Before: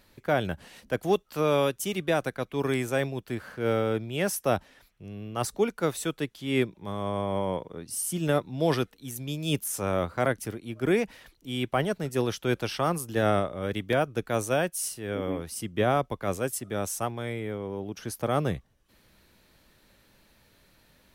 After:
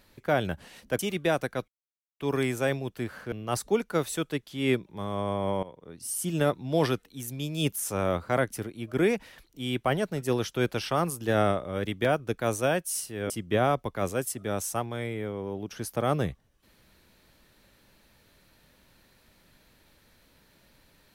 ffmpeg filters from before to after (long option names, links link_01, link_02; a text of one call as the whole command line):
ffmpeg -i in.wav -filter_complex "[0:a]asplit=6[link_01][link_02][link_03][link_04][link_05][link_06];[link_01]atrim=end=0.992[link_07];[link_02]atrim=start=1.818:end=2.51,asetpts=PTS-STARTPTS,afade=type=out:start_time=0.688:duration=0.004:curve=hsin,apad=pad_dur=0.52[link_08];[link_03]atrim=start=2.51:end=3.632,asetpts=PTS-STARTPTS,afade=type=in:duration=0.004:curve=hsin[link_09];[link_04]atrim=start=5.198:end=7.51,asetpts=PTS-STARTPTS,afade=type=out:start_time=2.308:duration=0.004:curve=hsin:silence=0.133352[link_10];[link_05]atrim=start=7.51:end=15.182,asetpts=PTS-STARTPTS,afade=type=in:duration=0.61:silence=0.133352[link_11];[link_06]atrim=start=15.558[link_12];[link_08][link_09]concat=n=2:v=0:a=1[link_13];[link_07][link_13]acrossfade=duration=0.004:curve1=hsin:curve2=hsin[link_14];[link_10][link_11]concat=n=2:v=0:a=1[link_15];[link_14][link_15]acrossfade=duration=0.004:curve1=hsin:curve2=hsin[link_16];[link_16][link_12]acrossfade=duration=0.004:curve1=hsin:curve2=hsin" out.wav